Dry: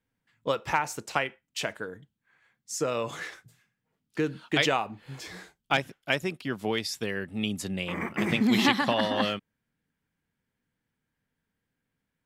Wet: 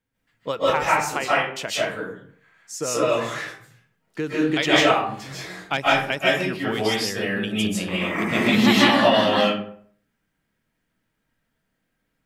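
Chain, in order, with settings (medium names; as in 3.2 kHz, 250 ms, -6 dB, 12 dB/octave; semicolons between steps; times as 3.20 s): algorithmic reverb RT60 0.57 s, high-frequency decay 0.6×, pre-delay 110 ms, DRR -8 dB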